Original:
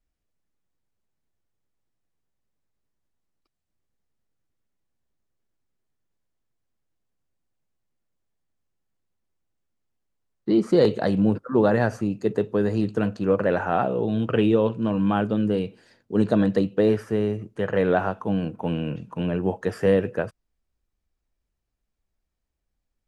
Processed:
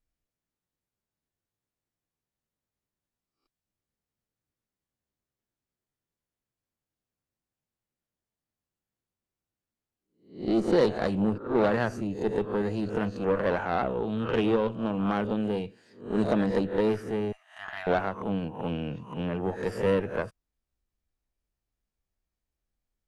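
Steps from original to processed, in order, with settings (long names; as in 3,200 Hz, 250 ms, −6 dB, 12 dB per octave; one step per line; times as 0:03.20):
peak hold with a rise ahead of every peak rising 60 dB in 0.42 s
0:17.32–0:17.87: linear-phase brick-wall high-pass 630 Hz
harmonic generator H 6 −20 dB, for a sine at −5.5 dBFS
level −6 dB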